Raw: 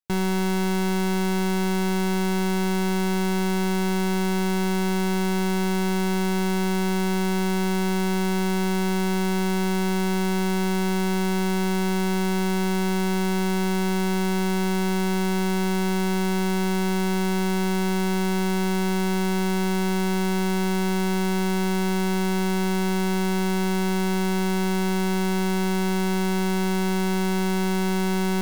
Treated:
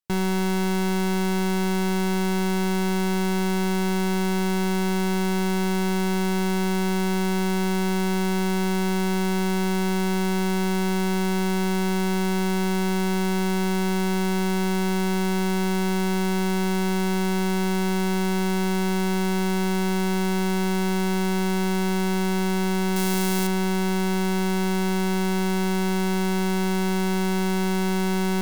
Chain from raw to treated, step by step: 22.96–23.47 high shelf 5000 Hz +10.5 dB

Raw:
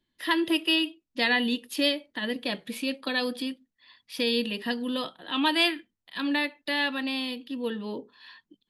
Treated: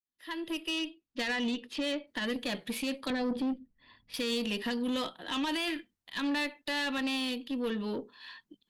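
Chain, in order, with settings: opening faded in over 1.66 s; 0.69–2.06 LPF 7700 Hz -> 3000 Hz 12 dB/oct; 3.1–4.14 tilt -4.5 dB/oct; limiter -22.5 dBFS, peak gain reduction 11 dB; tube stage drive 29 dB, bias 0.3; gain +2 dB

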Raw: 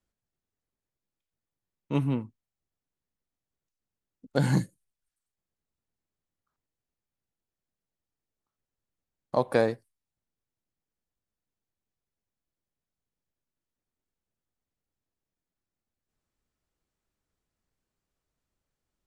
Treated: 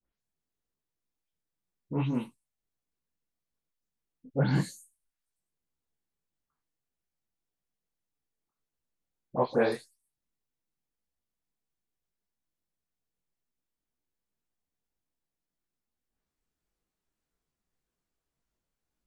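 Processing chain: spectral delay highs late, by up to 0.195 s; detuned doubles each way 59 cents; gain +2 dB

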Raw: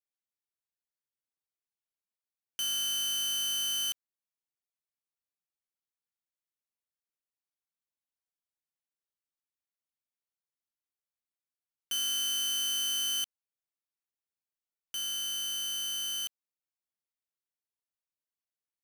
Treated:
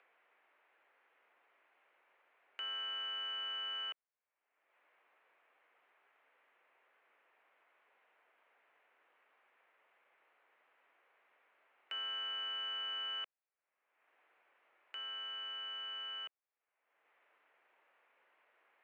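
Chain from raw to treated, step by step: mistuned SSB -74 Hz 520–2500 Hz; upward compressor, threshold -53 dBFS; gain +3 dB

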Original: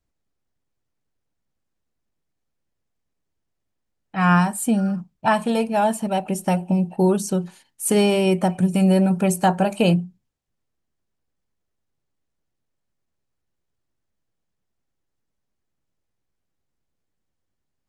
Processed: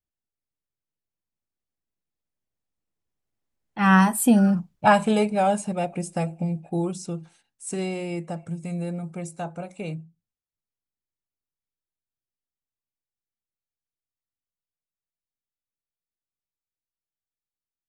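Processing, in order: Doppler pass-by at 4.53, 32 m/s, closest 18 m; gain +3.5 dB

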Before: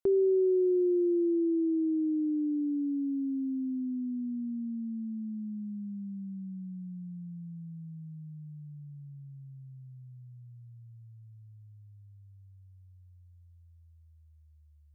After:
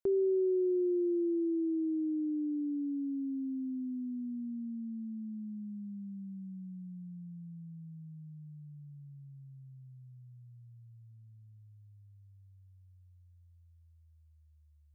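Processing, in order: 11.1–11.59 Doppler distortion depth 0.18 ms; gain -4 dB

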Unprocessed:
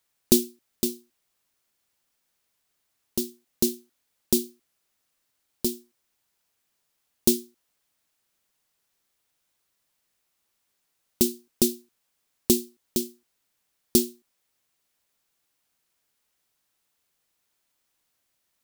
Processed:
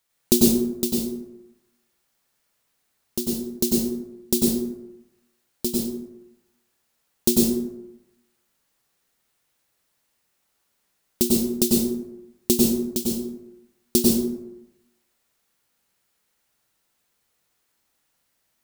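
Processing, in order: plate-style reverb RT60 0.92 s, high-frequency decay 0.45×, pre-delay 85 ms, DRR -3.5 dB

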